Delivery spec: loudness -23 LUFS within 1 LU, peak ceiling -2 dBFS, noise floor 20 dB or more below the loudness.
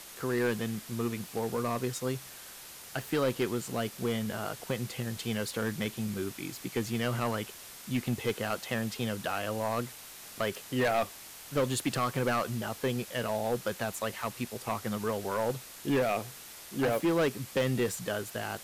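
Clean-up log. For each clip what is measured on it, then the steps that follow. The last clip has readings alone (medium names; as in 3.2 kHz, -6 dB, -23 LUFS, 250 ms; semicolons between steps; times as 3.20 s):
clipped samples 1.6%; clipping level -23.0 dBFS; noise floor -48 dBFS; noise floor target -53 dBFS; loudness -32.5 LUFS; peak level -23.0 dBFS; loudness target -23.0 LUFS
-> clip repair -23 dBFS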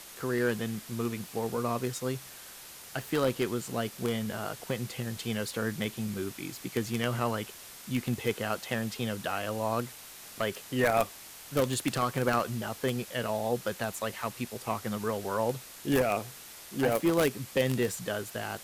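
clipped samples 0.0%; noise floor -48 dBFS; noise floor target -52 dBFS
-> noise reduction 6 dB, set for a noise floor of -48 dBFS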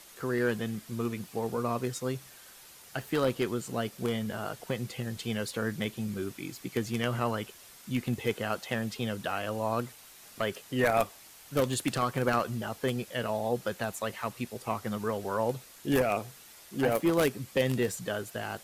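noise floor -53 dBFS; loudness -32.0 LUFS; peak level -14.0 dBFS; loudness target -23.0 LUFS
-> trim +9 dB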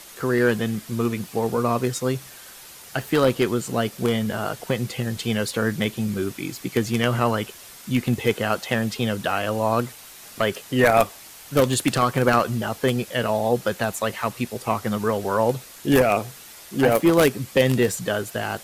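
loudness -23.0 LUFS; peak level -5.0 dBFS; noise floor -44 dBFS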